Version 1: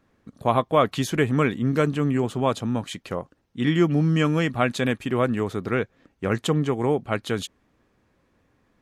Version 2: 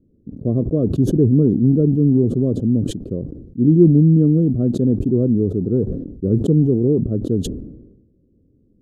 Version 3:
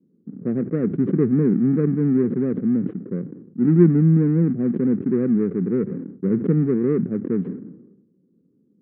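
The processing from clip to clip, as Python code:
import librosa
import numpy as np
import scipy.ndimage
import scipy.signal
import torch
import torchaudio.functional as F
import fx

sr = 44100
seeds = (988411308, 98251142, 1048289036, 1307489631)

y1 = scipy.signal.sosfilt(scipy.signal.cheby2(4, 40, 820.0, 'lowpass', fs=sr, output='sos'), x)
y1 = fx.sustainer(y1, sr, db_per_s=55.0)
y1 = y1 * 10.0 ** (8.5 / 20.0)
y2 = scipy.ndimage.median_filter(y1, 41, mode='constant')
y2 = fx.env_lowpass(y2, sr, base_hz=830.0, full_db=-10.5)
y2 = fx.cabinet(y2, sr, low_hz=170.0, low_slope=24, high_hz=2100.0, hz=(180.0, 300.0, 620.0, 940.0), db=(5, -3, -9, -10))
y2 = y2 * 10.0 ** (-1.0 / 20.0)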